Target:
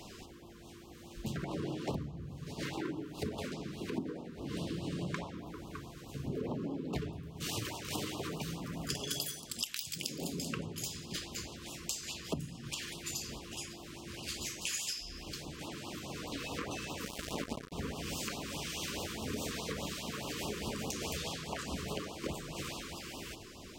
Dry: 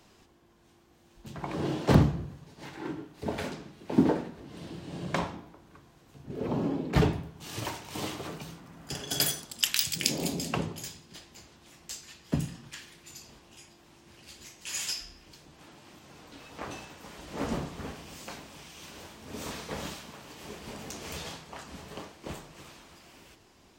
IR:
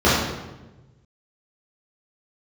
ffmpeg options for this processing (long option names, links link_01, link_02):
-filter_complex "[0:a]acompressor=threshold=-44dB:ratio=20,asettb=1/sr,asplit=3[link_01][link_02][link_03];[link_01]atrim=end=17.054[link_04];[link_02]atrim=start=17.05:end=17.72,asetpts=PTS-STARTPTS,afade=type=in:duration=0.004:curve=qsin,afade=type=out:start_time=0.666:duration=0.004:curve=qsin,acrusher=bits=6:mix=0:aa=0.5[link_05];[link_03]atrim=start=17.716[link_06];[link_04][link_05]acrossfade=duration=0.004:curve1=hsin:curve2=qsin[link_07];[link_07][link_06]acrossfade=duration=0.004:curve1=qsin:curve2=hsin,afftfilt=real='re*(1-between(b*sr/1024,680*pow(1900/680,0.5+0.5*sin(2*PI*4.8*pts/sr))/1.41,680*pow(1900/680,0.5+0.5*sin(2*PI*4.8*pts/sr))*1.41))':imag='im*(1-between(b*sr/1024,680*pow(1900/680,0.5+0.5*sin(2*PI*4.8*pts/sr))/1.41,680*pow(1900/680,0.5+0.5*sin(2*PI*4.8*pts/sr))*1.41))':win_size=1024:overlap=0.75,volume=10dB"